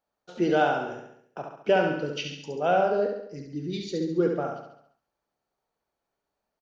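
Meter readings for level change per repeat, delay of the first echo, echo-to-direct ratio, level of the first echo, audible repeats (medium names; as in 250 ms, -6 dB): -5.5 dB, 69 ms, -3.5 dB, -5.0 dB, 6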